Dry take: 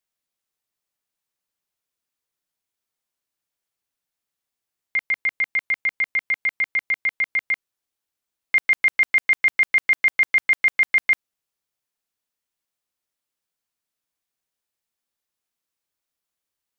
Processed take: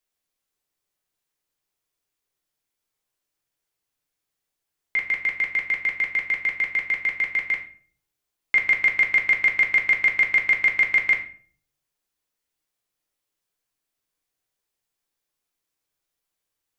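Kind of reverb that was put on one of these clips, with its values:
rectangular room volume 43 cubic metres, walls mixed, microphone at 0.52 metres

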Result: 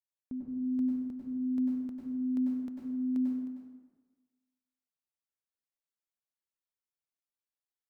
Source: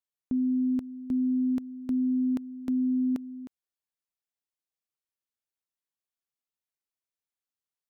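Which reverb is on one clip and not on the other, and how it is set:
dense smooth reverb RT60 1.3 s, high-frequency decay 0.55×, pre-delay 85 ms, DRR −2.5 dB
level −10.5 dB

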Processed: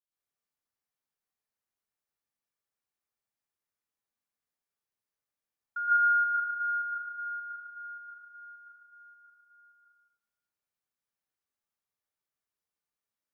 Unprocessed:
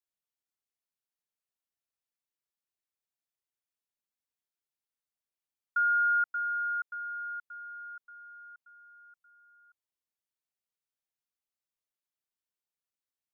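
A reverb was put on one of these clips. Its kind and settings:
dense smooth reverb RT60 0.9 s, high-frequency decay 0.35×, pre-delay 105 ms, DRR −9.5 dB
level −7 dB

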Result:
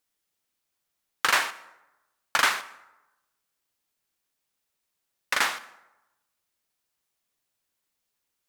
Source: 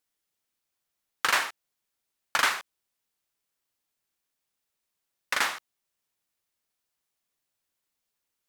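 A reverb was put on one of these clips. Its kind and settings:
dense smooth reverb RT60 1 s, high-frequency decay 0.55×, pre-delay 100 ms, DRR 19.5 dB
level +2 dB

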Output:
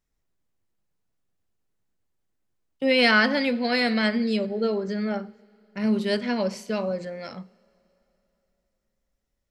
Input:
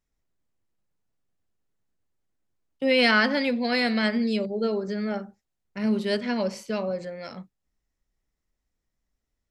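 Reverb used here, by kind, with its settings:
coupled-rooms reverb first 0.37 s, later 3.3 s, from −18 dB, DRR 16 dB
level +1 dB

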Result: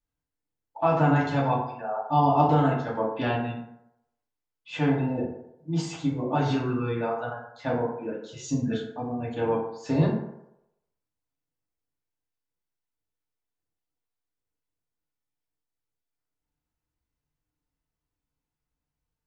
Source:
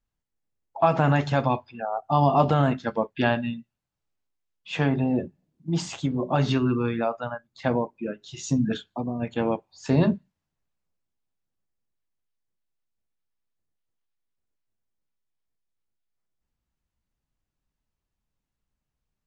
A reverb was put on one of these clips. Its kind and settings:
feedback delay network reverb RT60 0.82 s, low-frequency decay 0.75×, high-frequency decay 0.45×, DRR −5.5 dB
level −8.5 dB

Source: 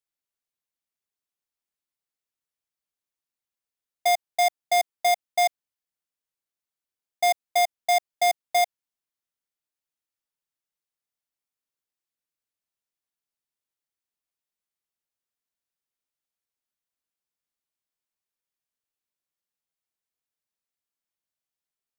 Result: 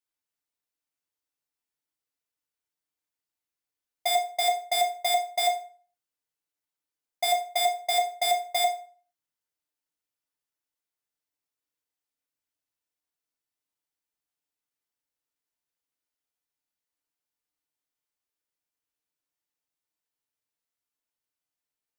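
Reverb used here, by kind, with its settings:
feedback delay network reverb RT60 0.44 s, low-frequency decay 0.75×, high-frequency decay 0.75×, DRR −0.5 dB
level −3 dB

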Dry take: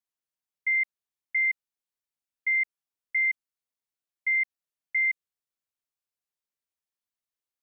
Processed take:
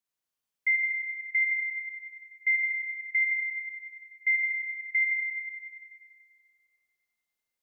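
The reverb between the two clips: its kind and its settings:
four-comb reverb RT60 2.1 s, combs from 32 ms, DRR −1 dB
level +1 dB

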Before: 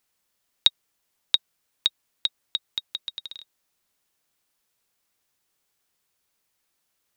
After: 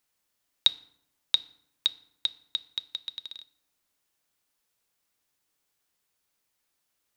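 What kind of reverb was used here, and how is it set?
feedback delay network reverb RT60 0.73 s, low-frequency decay 1.3×, high-frequency decay 0.65×, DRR 14 dB
level −3 dB

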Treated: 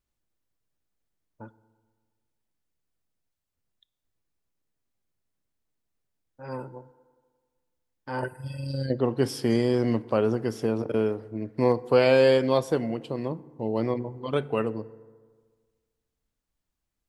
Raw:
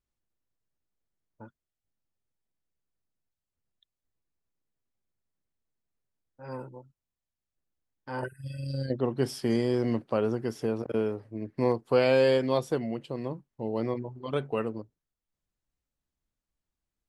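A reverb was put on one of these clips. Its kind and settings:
feedback delay network reverb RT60 1.6 s, high-frequency decay 0.45×, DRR 17 dB
level +3.5 dB

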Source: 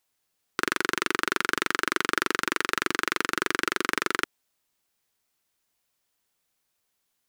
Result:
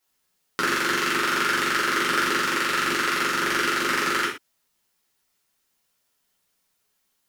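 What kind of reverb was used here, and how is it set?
reverb whose tail is shaped and stops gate 150 ms falling, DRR −6.5 dB
level −3 dB

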